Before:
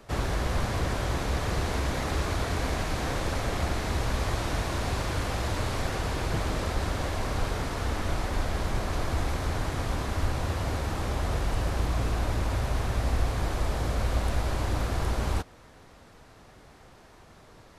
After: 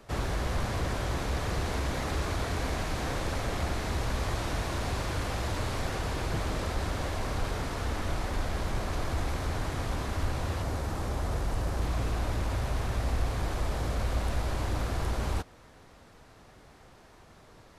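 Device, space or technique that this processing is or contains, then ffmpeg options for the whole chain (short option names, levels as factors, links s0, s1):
parallel distortion: -filter_complex "[0:a]asettb=1/sr,asplit=3[s0][s1][s2];[s0]atrim=end=10.624[s3];[s1]atrim=start=10.62:end=11.82,asetpts=PTS-STARTPTS,afade=t=in:d=0.004:c=qsin,afade=t=out:st=1.196:d=0.004:c=qsin,equalizer=f=2800:t=o:w=1.5:g=-4[s4];[s2]atrim=start=11.816[s5];[s3][s4]acrossfade=d=0.004:c1=hsin:c2=qsin[s6];[s6][s5]acrossfade=d=0.004:c1=qsin:c2=hsin,asplit=2[s7][s8];[s8]asoftclip=type=hard:threshold=0.0447,volume=0.266[s9];[s7][s9]amix=inputs=2:normalize=0,volume=0.631"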